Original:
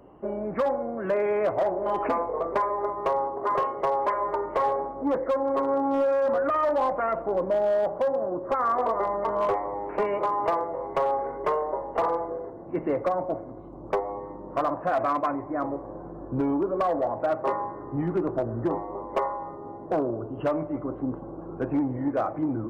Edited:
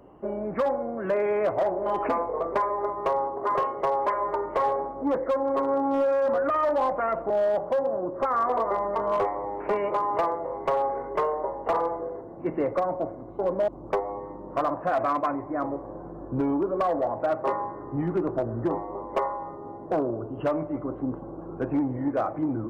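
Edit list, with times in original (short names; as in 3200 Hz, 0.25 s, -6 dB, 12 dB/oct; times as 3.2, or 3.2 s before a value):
7.3–7.59 move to 13.68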